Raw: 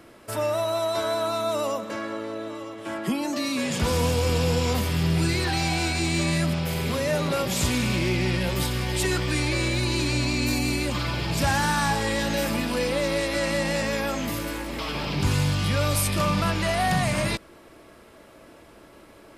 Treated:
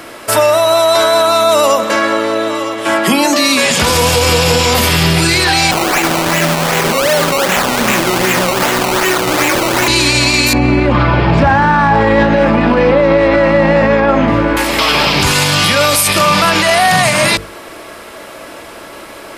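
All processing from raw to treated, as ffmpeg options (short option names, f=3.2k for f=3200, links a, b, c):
-filter_complex "[0:a]asettb=1/sr,asplit=3[a][b][c];[a]atrim=end=5.714[d];[b]atrim=start=5.71:end=9.88,asetpts=PTS-STARTPTS,afade=t=in:d=0.004:c=qsin,afade=t=out:st=4.166:d=0.004:c=qsin,highpass=f=160:w=0.5412,highpass=f=160:w=1.3066,acrusher=samples=18:mix=1:aa=0.000001:lfo=1:lforange=18:lforate=2.6[e];[c]atrim=start=9.876[f];[d][e]acrossfade=d=0.004:c1=hsin:c2=qsin[g];[g][f]acrossfade=d=0.004:c1=qsin:c2=hsin,asettb=1/sr,asplit=3[h][i][j];[h]atrim=end=10.534[k];[i]atrim=start=10.53:end=14.57,asetpts=PTS-STARTPTS,afade=t=in:d=0.004:c=qsin,afade=t=out:st=4.036:d=0.004:c=qsin,lowpass=1.5k,lowshelf=f=370:g=6.5[l];[j]atrim=start=14.566[m];[k][l]acrossfade=d=0.004:c1=hsin:c2=qsin[n];[n][m]acrossfade=d=0.004:c1=qsin:c2=hsin,lowshelf=f=340:g=-11.5,bandreject=f=50:t=h:w=6,bandreject=f=100:t=h:w=6,bandreject=f=150:t=h:w=6,bandreject=f=200:t=h:w=6,bandreject=f=250:t=h:w=6,bandreject=f=300:t=h:w=6,bandreject=f=350:t=h:w=6,bandreject=f=400:t=h:w=6,bandreject=f=450:t=h:w=6,bandreject=f=500:t=h:w=6,alimiter=level_in=23dB:limit=-1dB:release=50:level=0:latency=1,volume=-1dB"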